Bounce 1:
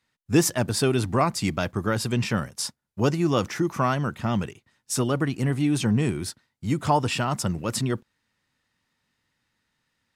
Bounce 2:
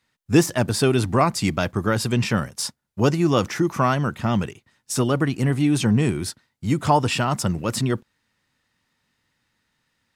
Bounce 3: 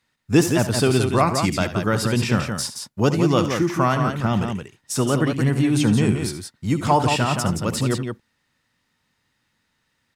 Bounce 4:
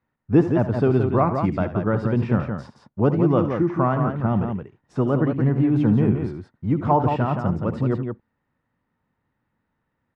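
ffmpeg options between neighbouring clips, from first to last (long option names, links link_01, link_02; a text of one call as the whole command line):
ffmpeg -i in.wav -af "deesser=0.45,volume=3.5dB" out.wav
ffmpeg -i in.wav -af "aecho=1:1:70|84|172:0.224|0.112|0.501" out.wav
ffmpeg -i in.wav -af "lowpass=1100" out.wav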